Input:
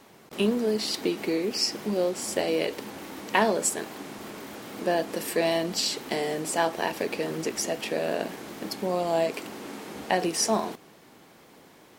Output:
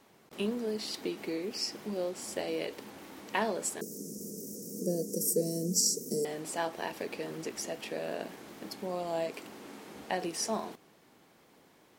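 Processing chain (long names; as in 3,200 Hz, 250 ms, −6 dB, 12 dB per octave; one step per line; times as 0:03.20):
0:03.81–0:06.25: drawn EQ curve 120 Hz 0 dB, 180 Hz +13 dB, 310 Hz +2 dB, 470 Hz +9 dB, 810 Hz −26 dB, 3,500 Hz −27 dB, 5,600 Hz +14 dB
level −8.5 dB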